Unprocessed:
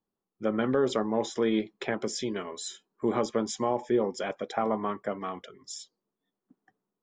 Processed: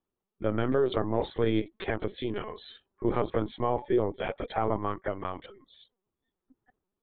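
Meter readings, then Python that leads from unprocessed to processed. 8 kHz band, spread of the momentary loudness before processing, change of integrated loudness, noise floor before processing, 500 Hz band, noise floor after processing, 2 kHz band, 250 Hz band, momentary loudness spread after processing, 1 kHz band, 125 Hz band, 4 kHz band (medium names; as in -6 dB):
under -40 dB, 12 LU, -0.5 dB, under -85 dBFS, 0.0 dB, under -85 dBFS, -1.0 dB, -1.5 dB, 10 LU, 0.0 dB, +6.5 dB, -4.0 dB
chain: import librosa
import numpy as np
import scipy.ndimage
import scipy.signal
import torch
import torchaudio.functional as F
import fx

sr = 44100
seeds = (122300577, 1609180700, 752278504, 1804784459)

y = fx.lpc_vocoder(x, sr, seeds[0], excitation='pitch_kept', order=16)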